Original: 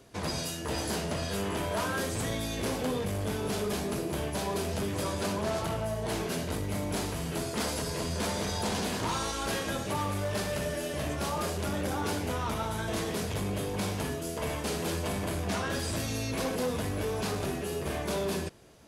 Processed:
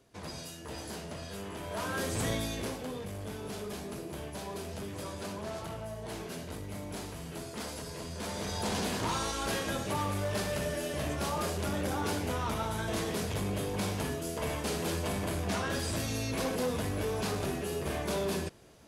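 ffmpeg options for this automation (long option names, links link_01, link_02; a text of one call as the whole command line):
ffmpeg -i in.wav -af "volume=8dB,afade=type=in:start_time=1.61:duration=0.69:silence=0.316228,afade=type=out:start_time=2.3:duration=0.49:silence=0.354813,afade=type=in:start_time=8.16:duration=0.62:silence=0.446684" out.wav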